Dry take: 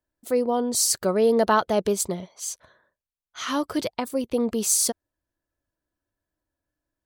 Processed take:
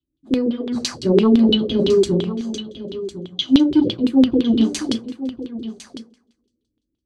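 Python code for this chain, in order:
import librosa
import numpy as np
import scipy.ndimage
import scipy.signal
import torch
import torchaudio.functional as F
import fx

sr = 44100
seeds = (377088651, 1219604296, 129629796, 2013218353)

p1 = scipy.signal.sosfilt(scipy.signal.ellip(3, 1.0, 40, [400.0, 3300.0], 'bandstop', fs=sr, output='sos'), x)
p2 = fx.peak_eq(p1, sr, hz=4200.0, db=2.5, octaves=1.8)
p3 = fx.hum_notches(p2, sr, base_hz=60, count=3)
p4 = fx.rev_double_slope(p3, sr, seeds[0], early_s=0.31, late_s=2.0, knee_db=-27, drr_db=-5.5)
p5 = fx.leveller(p4, sr, passes=1)
p6 = fx.notch_comb(p5, sr, f0_hz=460.0)
p7 = 10.0 ** (-14.0 / 20.0) * np.tanh(p6 / 10.0 ** (-14.0 / 20.0))
p8 = p6 + (p7 * 10.0 ** (-6.0 / 20.0))
p9 = fx.filter_lfo_lowpass(p8, sr, shape='saw_down', hz=5.9, low_hz=320.0, high_hz=3500.0, q=3.8)
p10 = p9 + fx.echo_single(p9, sr, ms=1054, db=-13.0, dry=0)
y = p10 * 10.0 ** (-1.0 / 20.0)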